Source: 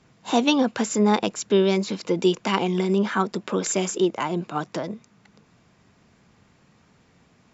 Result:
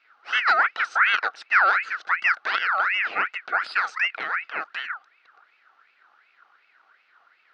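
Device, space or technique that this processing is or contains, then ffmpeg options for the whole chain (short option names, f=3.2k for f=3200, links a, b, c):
voice changer toy: -af "aeval=exprs='val(0)*sin(2*PI*1700*n/s+1700*0.45/2.7*sin(2*PI*2.7*n/s))':c=same,highpass=520,equalizer=f=560:t=q:w=4:g=-4,equalizer=f=980:t=q:w=4:g=-4,equalizer=f=1.4k:t=q:w=4:g=10,equalizer=f=2.3k:t=q:w=4:g=-3,equalizer=f=3.4k:t=q:w=4:g=-5,lowpass=f=4.2k:w=0.5412,lowpass=f=4.2k:w=1.3066"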